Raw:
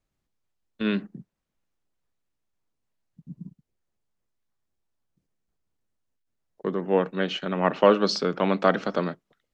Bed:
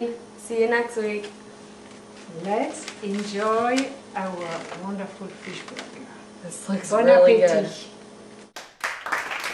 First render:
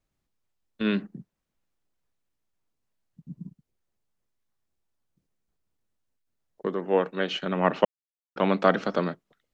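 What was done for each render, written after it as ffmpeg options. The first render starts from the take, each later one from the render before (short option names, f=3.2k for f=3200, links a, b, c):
-filter_complex "[0:a]asettb=1/sr,asplit=3[a][b][c];[a]atrim=end=6.674[d];[b]atrim=start=6.67:end=7.34,asetpts=PTS-STARTPTS,afade=t=in:d=0.004:c=qsin,afade=t=out:st=0.666:d=0.004:c=qsin,bass=f=250:g=-7,treble=f=4k:g=0[e];[c]atrim=start=7.336[f];[d][e]acrossfade=d=0.004:c1=hsin:c2=qsin[g];[g][f]acrossfade=d=0.004:c1=qsin:c2=hsin,asplit=3[h][i][j];[h]atrim=end=7.85,asetpts=PTS-STARTPTS,afade=t=out:st=7.846:d=0.004:c=hsin[k];[i]atrim=start=7.85:end=8.36,asetpts=PTS-STARTPTS,volume=0[l];[j]atrim=start=8.36,asetpts=PTS-STARTPTS,afade=t=in:d=0.004:c=hsin[m];[k][l][m]concat=n=3:v=0:a=1"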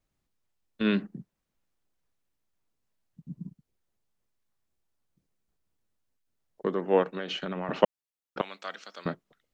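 -filter_complex "[0:a]asettb=1/sr,asplit=3[a][b][c];[a]atrim=end=7.034[d];[b]atrim=start=7.03:end=7.69,asetpts=PTS-STARTPTS,afade=t=in:d=0.004:c=qsin,afade=t=out:st=0.656:d=0.004:c=qsin,acompressor=threshold=-29dB:ratio=10:attack=3.2:release=140:knee=1:detection=peak[e];[c]atrim=start=7.686[f];[d][e]acrossfade=d=0.004:c1=hsin:c2=qsin[g];[g][f]acrossfade=d=0.004:c1=qsin:c2=hsin,asettb=1/sr,asplit=3[h][i][j];[h]atrim=end=8.414[k];[i]atrim=start=8.41:end=9.06,asetpts=PTS-STARTPTS,afade=t=in:d=0.004:c=qsin,afade=t=out:st=0.646:d=0.004:c=qsin,aderivative[l];[j]atrim=start=9.056[m];[k][l]acrossfade=d=0.004:c1=hsin:c2=qsin[n];[n][m]acrossfade=d=0.004:c1=qsin:c2=hsin"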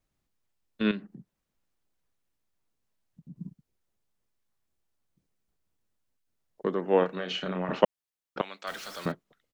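-filter_complex "[0:a]asettb=1/sr,asplit=3[a][b][c];[a]atrim=end=0.914[d];[b]atrim=start=0.91:end=3.36,asetpts=PTS-STARTPTS,afade=t=in:d=0.004:c=qsin,afade=t=out:st=2.446:d=0.004:c=qsin,acompressor=threshold=-51dB:ratio=1.5:attack=3.2:release=140:knee=1:detection=peak[e];[c]atrim=start=3.356[f];[d][e]acrossfade=d=0.004:c1=hsin:c2=qsin[g];[g][f]acrossfade=d=0.004:c1=qsin:c2=hsin,asplit=3[h][i][j];[h]afade=t=out:st=7.01:d=0.02[k];[i]asplit=2[l][m];[m]adelay=33,volume=-5dB[n];[l][n]amix=inputs=2:normalize=0,afade=t=in:st=7.01:d=0.02,afade=t=out:st=7.74:d=0.02[o];[j]afade=t=in:st=7.74:d=0.02[p];[k][o][p]amix=inputs=3:normalize=0,asettb=1/sr,asplit=3[q][r][s];[q]atrim=end=8.674[t];[r]atrim=start=8.67:end=9.12,asetpts=PTS-STARTPTS,afade=t=in:d=0.004:c=qsin,afade=t=out:st=0.446:d=0.004:c=qsin,aeval=exprs='val(0)+0.5*0.0106*sgn(val(0))':c=same[u];[s]atrim=start=9.116[v];[t][u]acrossfade=d=0.004:c1=hsin:c2=qsin[w];[w][v]acrossfade=d=0.004:c1=qsin:c2=hsin"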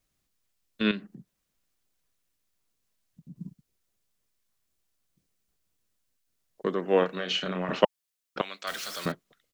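-af "highshelf=f=2.3k:g=8,bandreject=f=870:w=12"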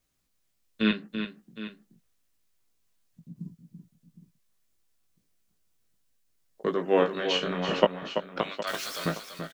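-filter_complex "[0:a]asplit=2[a][b];[b]adelay=18,volume=-6dB[c];[a][c]amix=inputs=2:normalize=0,asplit=2[d][e];[e]aecho=0:1:335|763:0.376|0.2[f];[d][f]amix=inputs=2:normalize=0"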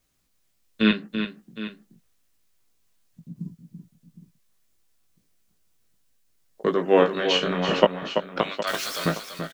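-af "volume=5dB,alimiter=limit=-2dB:level=0:latency=1"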